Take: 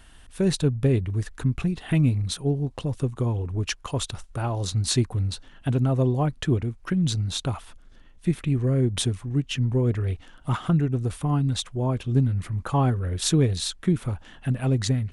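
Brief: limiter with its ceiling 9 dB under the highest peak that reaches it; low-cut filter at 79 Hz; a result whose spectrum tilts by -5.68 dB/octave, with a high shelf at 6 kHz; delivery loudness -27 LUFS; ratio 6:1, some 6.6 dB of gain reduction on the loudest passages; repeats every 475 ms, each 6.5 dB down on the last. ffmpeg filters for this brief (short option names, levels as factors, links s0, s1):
-af "highpass=79,highshelf=f=6000:g=-3.5,acompressor=threshold=0.0708:ratio=6,alimiter=limit=0.075:level=0:latency=1,aecho=1:1:475|950|1425|1900|2375|2850:0.473|0.222|0.105|0.0491|0.0231|0.0109,volume=1.58"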